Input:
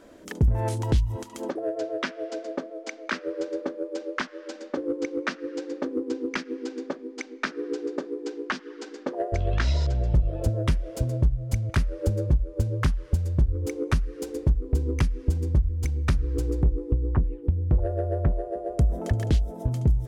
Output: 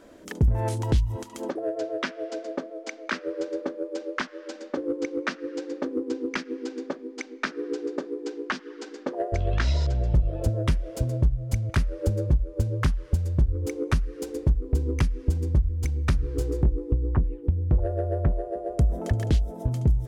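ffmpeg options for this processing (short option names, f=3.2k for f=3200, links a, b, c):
-filter_complex "[0:a]asettb=1/sr,asplit=3[a][b][c];[a]atrim=end=16.214[d];[b]atrim=start=16.21:end=16.66,asetpts=PTS-STARTPTS,afade=t=in:d=0.004:c=qsin,afade=t=out:st=0.446:d=0.004:c=qsin,asplit=2[e][f];[f]adelay=22,volume=-5dB[g];[e][g]amix=inputs=2:normalize=0,atrim=end_sample=19845[h];[c]atrim=start=16.656[i];[d][h]acrossfade=d=0.004:c1=hsin:c2=qsin[j];[j][i]acrossfade=d=0.004:c1=qsin:c2=hsin"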